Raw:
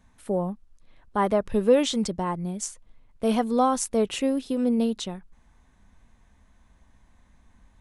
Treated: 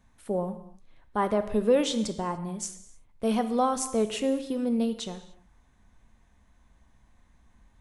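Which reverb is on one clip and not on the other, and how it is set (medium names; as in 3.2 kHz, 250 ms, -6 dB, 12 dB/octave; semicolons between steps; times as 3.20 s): gated-style reverb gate 320 ms falling, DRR 9.5 dB; trim -3 dB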